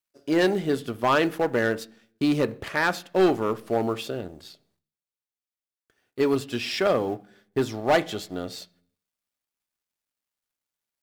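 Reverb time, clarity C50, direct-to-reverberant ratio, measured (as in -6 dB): 0.45 s, 21.5 dB, 11.0 dB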